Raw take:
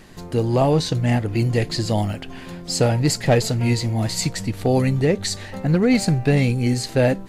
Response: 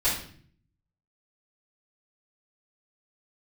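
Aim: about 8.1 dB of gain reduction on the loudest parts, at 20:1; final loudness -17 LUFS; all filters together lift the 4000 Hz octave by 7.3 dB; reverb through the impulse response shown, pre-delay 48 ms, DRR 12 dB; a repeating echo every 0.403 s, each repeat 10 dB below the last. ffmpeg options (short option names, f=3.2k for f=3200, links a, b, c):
-filter_complex "[0:a]equalizer=f=4k:t=o:g=8.5,acompressor=threshold=-20dB:ratio=20,aecho=1:1:403|806|1209|1612:0.316|0.101|0.0324|0.0104,asplit=2[a][b];[1:a]atrim=start_sample=2205,adelay=48[c];[b][c]afir=irnorm=-1:irlink=0,volume=-23.5dB[d];[a][d]amix=inputs=2:normalize=0,volume=7dB"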